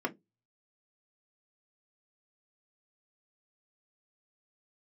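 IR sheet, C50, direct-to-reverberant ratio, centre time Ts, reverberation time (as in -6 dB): 22.5 dB, 0.0 dB, 5 ms, 0.20 s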